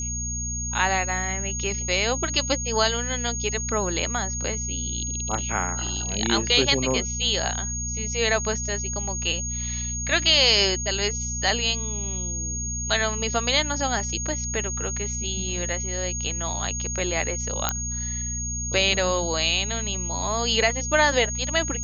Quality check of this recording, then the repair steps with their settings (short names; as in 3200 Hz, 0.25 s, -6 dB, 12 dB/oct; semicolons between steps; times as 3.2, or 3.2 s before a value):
hum 60 Hz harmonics 4 -32 dBFS
tone 6600 Hz -29 dBFS
17.69 pop -5 dBFS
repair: de-click; de-hum 60 Hz, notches 4; notch 6600 Hz, Q 30